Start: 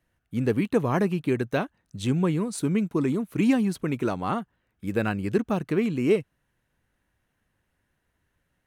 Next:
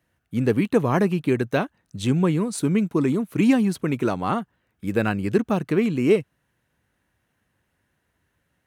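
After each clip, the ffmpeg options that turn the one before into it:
-af "highpass=64,volume=1.5"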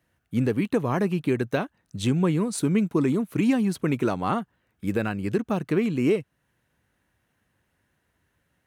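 -af "alimiter=limit=0.224:level=0:latency=1:release=382"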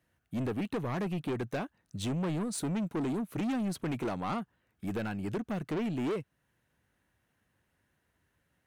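-af "asoftclip=type=tanh:threshold=0.0562,volume=0.631"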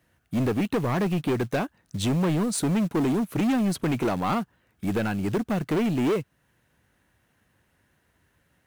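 -af "acrusher=bits=6:mode=log:mix=0:aa=0.000001,volume=2.66"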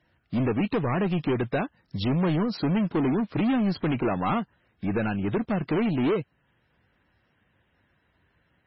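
-ar 24000 -c:a libmp3lame -b:a 16k

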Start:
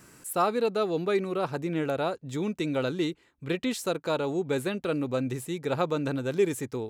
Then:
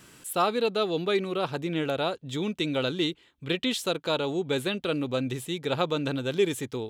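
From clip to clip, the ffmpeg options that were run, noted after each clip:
-af "equalizer=f=3300:t=o:w=0.62:g=11.5"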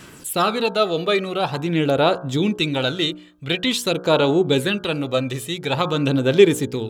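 -af "aphaser=in_gain=1:out_gain=1:delay=1.7:decay=0.46:speed=0.47:type=sinusoidal,bandreject=f=60.27:t=h:w=4,bandreject=f=120.54:t=h:w=4,bandreject=f=180.81:t=h:w=4,bandreject=f=241.08:t=h:w=4,bandreject=f=301.35:t=h:w=4,bandreject=f=361.62:t=h:w=4,bandreject=f=421.89:t=h:w=4,bandreject=f=482.16:t=h:w=4,bandreject=f=542.43:t=h:w=4,bandreject=f=602.7:t=h:w=4,bandreject=f=662.97:t=h:w=4,bandreject=f=723.24:t=h:w=4,bandreject=f=783.51:t=h:w=4,bandreject=f=843.78:t=h:w=4,bandreject=f=904.05:t=h:w=4,bandreject=f=964.32:t=h:w=4,bandreject=f=1024.59:t=h:w=4,bandreject=f=1084.86:t=h:w=4,bandreject=f=1145.13:t=h:w=4,bandreject=f=1205.4:t=h:w=4,bandreject=f=1265.67:t=h:w=4,bandreject=f=1325.94:t=h:w=4,bandreject=f=1386.21:t=h:w=4,bandreject=f=1446.48:t=h:w=4,bandreject=f=1506.75:t=h:w=4,bandreject=f=1567.02:t=h:w=4,bandreject=f=1627.29:t=h:w=4,volume=2.24"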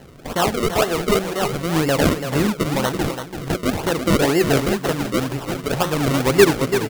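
-af "acrusher=samples=36:mix=1:aa=0.000001:lfo=1:lforange=36:lforate=2,aecho=1:1:336:0.376"

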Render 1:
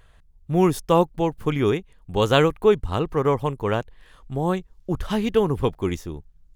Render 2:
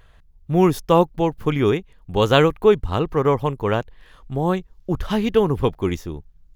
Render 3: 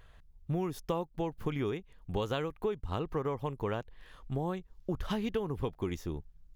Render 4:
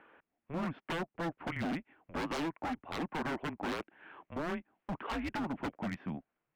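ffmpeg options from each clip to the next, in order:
-af "equalizer=f=8700:t=o:w=0.54:g=-7,volume=1.33"
-af "acompressor=threshold=0.0631:ratio=10,volume=0.531"
-af "highpass=f=360:t=q:w=0.5412,highpass=f=360:t=q:w=1.307,lowpass=f=2700:t=q:w=0.5176,lowpass=f=2700:t=q:w=0.7071,lowpass=f=2700:t=q:w=1.932,afreqshift=-160,aeval=exprs='0.0168*(abs(mod(val(0)/0.0168+3,4)-2)-1)':c=same,volume=1.88"

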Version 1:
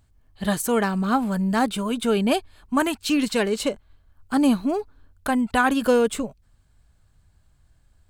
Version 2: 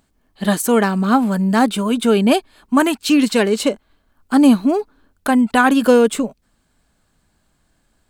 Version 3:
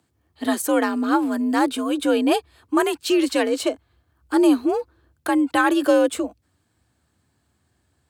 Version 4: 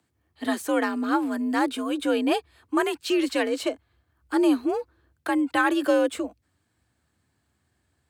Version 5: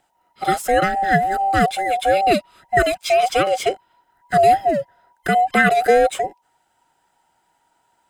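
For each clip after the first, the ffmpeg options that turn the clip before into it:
-af "lowshelf=f=150:t=q:w=1.5:g=-11.5,volume=1.88"
-af "afreqshift=59,volume=0.562"
-filter_complex "[0:a]equalizer=f=2000:t=o:w=0.9:g=3.5,acrossover=split=130|480|6000[s0][s1][s2][s3];[s3]asoftclip=type=tanh:threshold=0.0211[s4];[s0][s1][s2][s4]amix=inputs=4:normalize=0,volume=0.596"
-af "afftfilt=real='real(if(between(b,1,1008),(2*floor((b-1)/48)+1)*48-b,b),0)':imag='imag(if(between(b,1,1008),(2*floor((b-1)/48)+1)*48-b,b),0)*if(between(b,1,1008),-1,1)':win_size=2048:overlap=0.75,equalizer=f=4500:w=6:g=-4.5,volume=2.24"

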